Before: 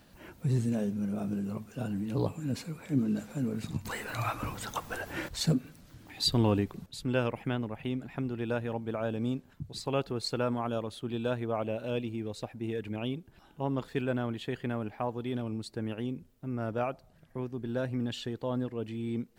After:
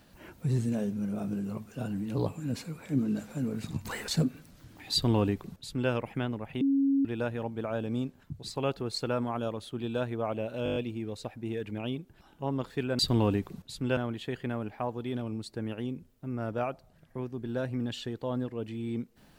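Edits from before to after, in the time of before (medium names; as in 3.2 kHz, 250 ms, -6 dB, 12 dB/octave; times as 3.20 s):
4.08–5.38 s: delete
6.23–7.21 s: copy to 14.17 s
7.91–8.35 s: bleep 275 Hz -22 dBFS
11.94 s: stutter 0.02 s, 7 plays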